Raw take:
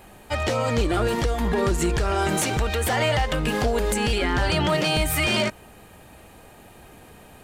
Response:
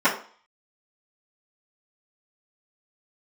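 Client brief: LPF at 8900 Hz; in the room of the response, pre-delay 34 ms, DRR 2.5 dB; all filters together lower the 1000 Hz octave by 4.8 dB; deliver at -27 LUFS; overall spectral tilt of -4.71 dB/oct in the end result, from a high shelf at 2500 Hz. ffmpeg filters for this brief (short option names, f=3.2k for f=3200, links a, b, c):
-filter_complex "[0:a]lowpass=8.9k,equalizer=f=1k:t=o:g=-6,highshelf=f=2.5k:g=-4,asplit=2[a][b];[1:a]atrim=start_sample=2205,adelay=34[c];[b][c]afir=irnorm=-1:irlink=0,volume=-21.5dB[d];[a][d]amix=inputs=2:normalize=0,volume=-3.5dB"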